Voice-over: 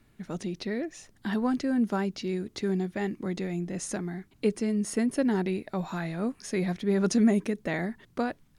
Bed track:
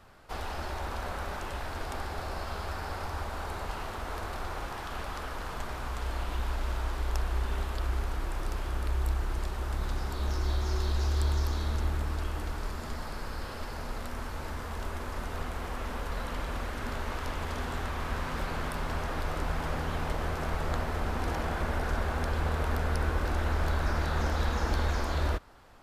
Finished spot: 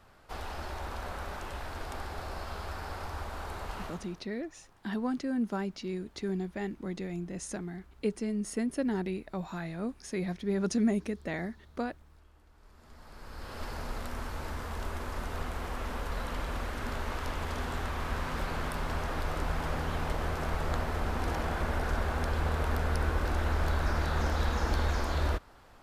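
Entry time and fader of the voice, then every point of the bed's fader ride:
3.60 s, -5.0 dB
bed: 3.86 s -3 dB
4.28 s -27 dB
12.49 s -27 dB
13.64 s -0.5 dB

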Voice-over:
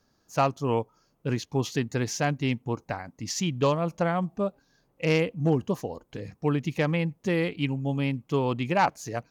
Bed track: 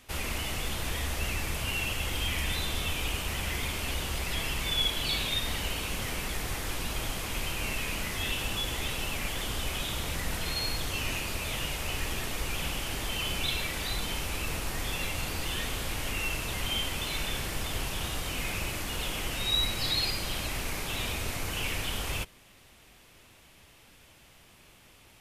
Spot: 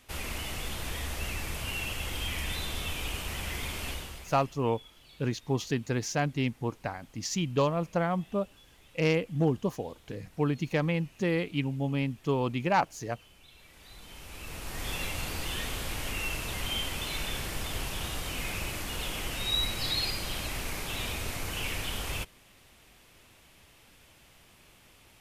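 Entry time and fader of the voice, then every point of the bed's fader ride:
3.95 s, -2.5 dB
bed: 3.89 s -3 dB
4.63 s -26 dB
13.48 s -26 dB
14.9 s -1.5 dB

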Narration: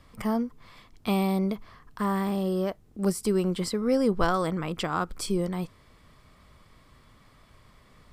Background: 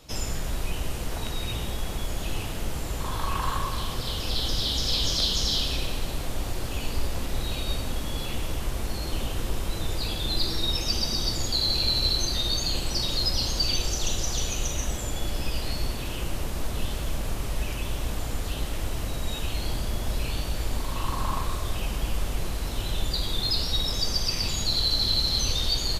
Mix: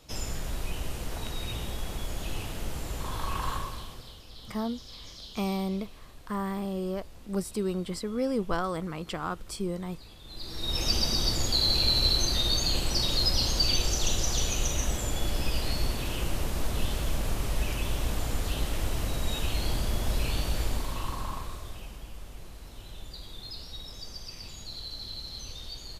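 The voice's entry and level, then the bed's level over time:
4.30 s, -5.0 dB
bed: 3.53 s -4 dB
4.27 s -20.5 dB
10.23 s -20.5 dB
10.83 s 0 dB
20.6 s 0 dB
22.08 s -15.5 dB

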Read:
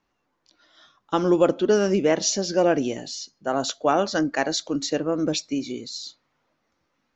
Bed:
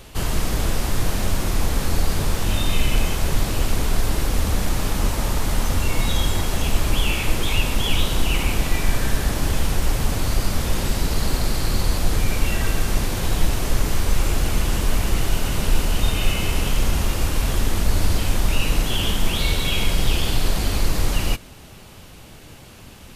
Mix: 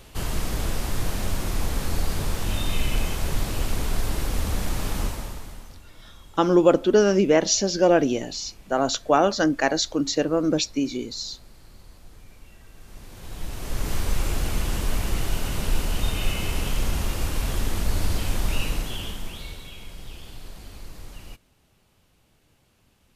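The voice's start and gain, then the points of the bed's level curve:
5.25 s, +2.0 dB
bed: 5.01 s -5 dB
5.87 s -28 dB
12.69 s -28 dB
13.92 s -5 dB
18.59 s -5 dB
19.77 s -20.5 dB

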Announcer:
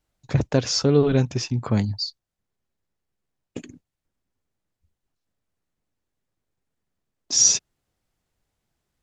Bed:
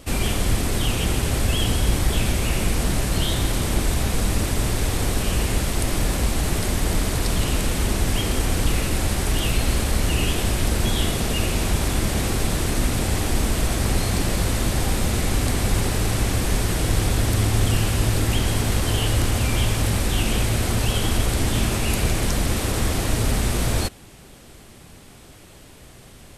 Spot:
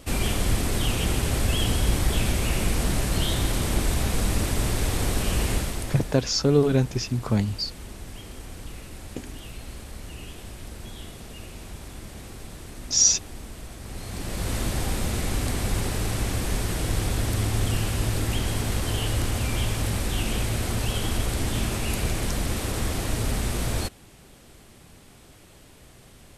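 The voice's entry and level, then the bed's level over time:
5.60 s, -1.5 dB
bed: 5.53 s -2.5 dB
6.26 s -18 dB
13.81 s -18 dB
14.54 s -5 dB

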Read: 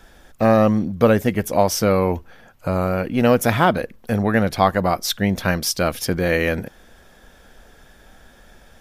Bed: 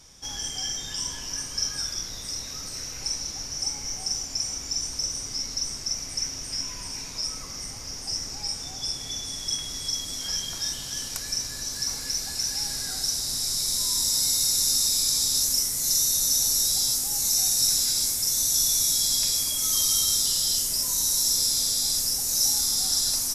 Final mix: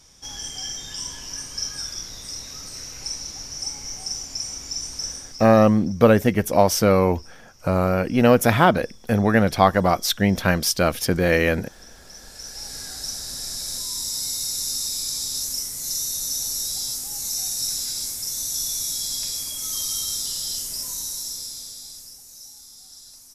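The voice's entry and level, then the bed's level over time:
5.00 s, +0.5 dB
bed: 5.09 s -1 dB
5.77 s -20 dB
11.91 s -20 dB
12.76 s -4 dB
20.87 s -4 dB
22.49 s -21 dB

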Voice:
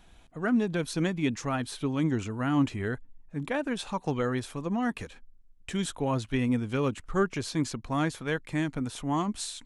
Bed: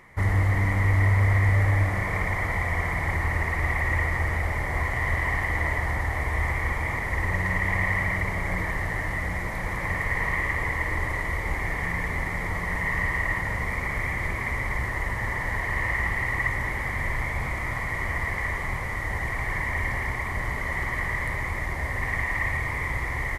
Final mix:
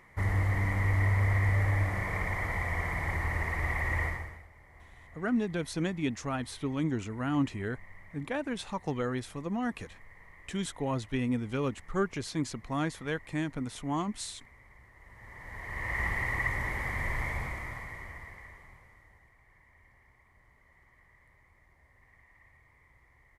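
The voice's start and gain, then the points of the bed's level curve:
4.80 s, -3.5 dB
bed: 4.07 s -6 dB
4.49 s -29 dB
14.94 s -29 dB
16.02 s -5 dB
17.31 s -5 dB
19.36 s -34.5 dB

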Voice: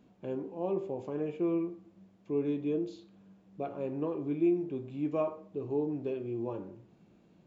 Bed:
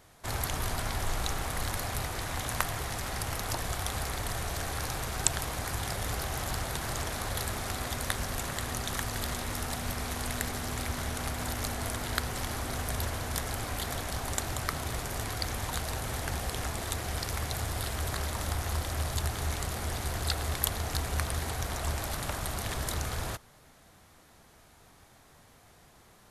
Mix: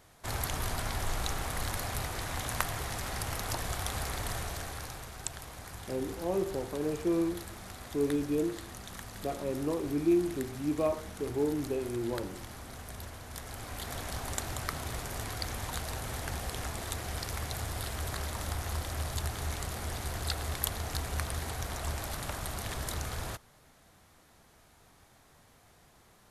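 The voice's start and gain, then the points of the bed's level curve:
5.65 s, +1.5 dB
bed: 4.34 s -1.5 dB
5.17 s -11 dB
13.25 s -11 dB
14.06 s -3 dB

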